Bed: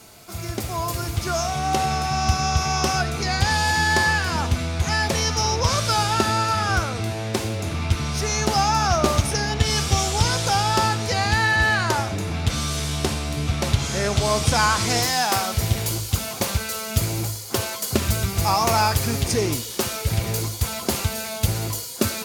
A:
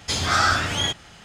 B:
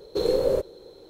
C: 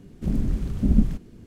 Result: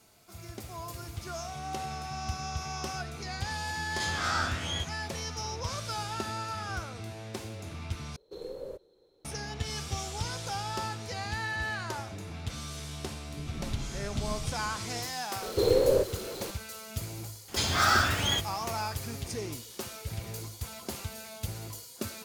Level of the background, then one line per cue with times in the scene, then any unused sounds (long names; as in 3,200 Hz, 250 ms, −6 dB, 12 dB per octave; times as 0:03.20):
bed −14.5 dB
0:03.92: mix in A −12.5 dB + peak hold with a rise ahead of every peak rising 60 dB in 0.37 s
0:08.16: overwrite with B −18 dB
0:13.33: mix in C −1.5 dB + downward compressor 3 to 1, threshold −37 dBFS
0:15.42: mix in B −1.5 dB + converter with a step at zero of −35.5 dBFS
0:17.48: mix in A −4.5 dB + one scale factor per block 5 bits